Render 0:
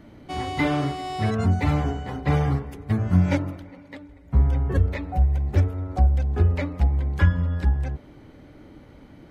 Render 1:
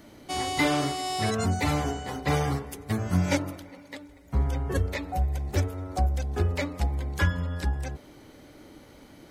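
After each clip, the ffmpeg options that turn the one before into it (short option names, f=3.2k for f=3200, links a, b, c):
-af "bass=f=250:g=-7,treble=f=4k:g=13"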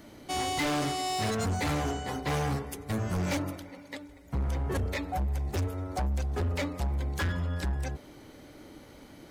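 -af "asoftclip=type=hard:threshold=-26.5dB"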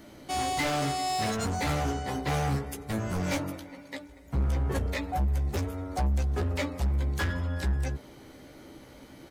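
-filter_complex "[0:a]asplit=2[a][b];[b]adelay=15,volume=-6dB[c];[a][c]amix=inputs=2:normalize=0"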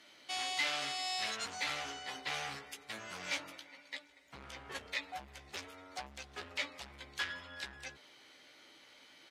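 -af "bandpass=f=3.2k:t=q:w=1.1:csg=0,volume=1dB"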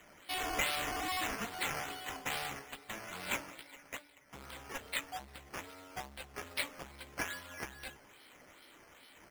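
-af "acrusher=samples=9:mix=1:aa=0.000001:lfo=1:lforange=5.4:lforate=2.4,volume=1dB"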